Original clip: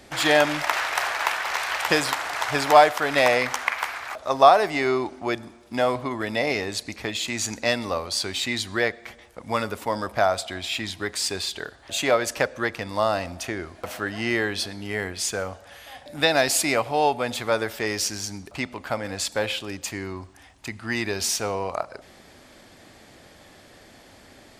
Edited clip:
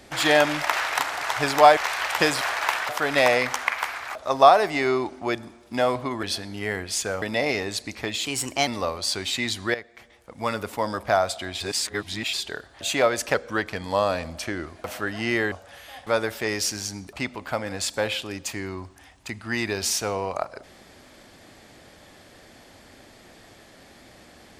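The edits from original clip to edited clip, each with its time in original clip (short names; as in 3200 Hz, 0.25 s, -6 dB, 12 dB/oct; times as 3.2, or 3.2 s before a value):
0.99–1.47 swap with 2.11–2.89
7.26–7.76 speed 118%
8.83–9.77 fade in, from -13.5 dB
10.69–11.42 reverse
12.43–13.66 speed 93%
14.51–15.5 move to 6.23
16.05–17.45 cut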